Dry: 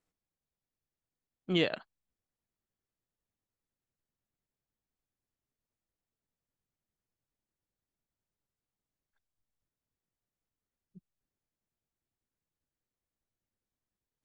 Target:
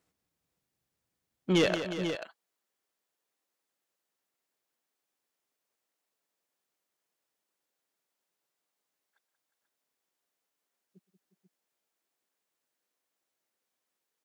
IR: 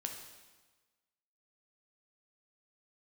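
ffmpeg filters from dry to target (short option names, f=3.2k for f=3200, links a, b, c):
-af "asetnsamples=n=441:p=0,asendcmd='1.66 highpass f 430',highpass=65,asoftclip=type=tanh:threshold=-26.5dB,aecho=1:1:119|184|358|483|489:0.1|0.282|0.224|0.112|0.299,volume=8dB"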